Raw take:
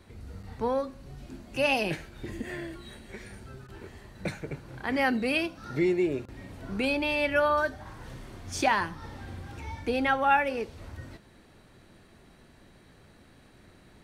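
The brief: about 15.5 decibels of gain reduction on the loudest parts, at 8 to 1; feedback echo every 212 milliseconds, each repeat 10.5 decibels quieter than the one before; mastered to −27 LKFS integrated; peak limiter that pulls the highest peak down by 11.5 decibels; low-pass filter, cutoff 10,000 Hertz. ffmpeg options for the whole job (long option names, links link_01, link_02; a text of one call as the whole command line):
ffmpeg -i in.wav -af "lowpass=10000,acompressor=threshold=-35dB:ratio=8,alimiter=level_in=8.5dB:limit=-24dB:level=0:latency=1,volume=-8.5dB,aecho=1:1:212|424|636:0.299|0.0896|0.0269,volume=15.5dB" out.wav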